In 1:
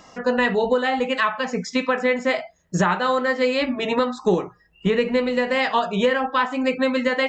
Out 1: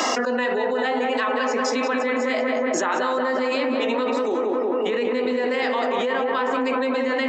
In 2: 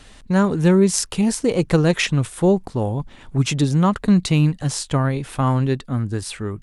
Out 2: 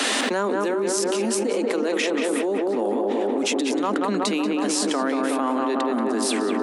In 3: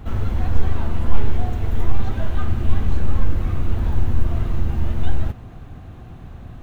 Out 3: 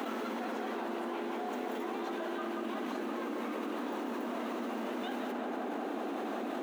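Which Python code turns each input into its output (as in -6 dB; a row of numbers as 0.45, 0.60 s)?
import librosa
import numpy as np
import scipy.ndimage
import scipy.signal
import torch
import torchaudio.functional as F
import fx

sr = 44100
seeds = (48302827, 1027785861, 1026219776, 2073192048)

y = scipy.signal.sosfilt(scipy.signal.butter(12, 230.0, 'highpass', fs=sr, output='sos'), x)
y = fx.rider(y, sr, range_db=4, speed_s=0.5)
y = fx.echo_tape(y, sr, ms=184, feedback_pct=85, wet_db=-3.5, lp_hz=1800.0, drive_db=2.0, wow_cents=5)
y = fx.env_flatten(y, sr, amount_pct=100)
y = y * 10.0 ** (-8.0 / 20.0)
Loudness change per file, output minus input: -1.0, -3.5, -12.0 LU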